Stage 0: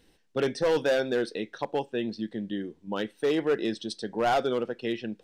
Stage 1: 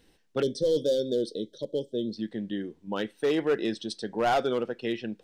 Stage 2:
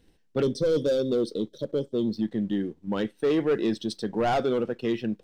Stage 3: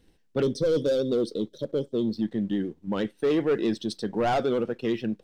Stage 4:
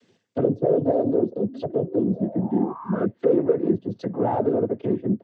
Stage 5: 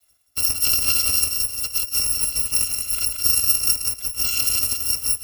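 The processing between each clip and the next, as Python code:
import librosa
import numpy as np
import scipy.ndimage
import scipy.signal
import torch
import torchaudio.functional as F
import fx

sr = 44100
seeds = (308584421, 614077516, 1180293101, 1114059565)

y1 = fx.spec_box(x, sr, start_s=0.42, length_s=1.75, low_hz=640.0, high_hz=3000.0, gain_db=-26)
y2 = fx.leveller(y1, sr, passes=1)
y2 = fx.low_shelf(y2, sr, hz=340.0, db=9.0)
y2 = y2 * librosa.db_to_amplitude(-3.5)
y3 = fx.vibrato(y2, sr, rate_hz=11.0, depth_cents=39.0)
y4 = fx.env_lowpass_down(y3, sr, base_hz=640.0, full_db=-25.5)
y4 = fx.spec_paint(y4, sr, seeds[0], shape='rise', start_s=1.46, length_s=1.59, low_hz=240.0, high_hz=1300.0, level_db=-43.0)
y4 = fx.noise_vocoder(y4, sr, seeds[1], bands=16)
y4 = y4 * librosa.db_to_amplitude(5.0)
y5 = fx.bit_reversed(y4, sr, seeds[2], block=256)
y5 = fx.echo_feedback(y5, sr, ms=176, feedback_pct=38, wet_db=-5.0)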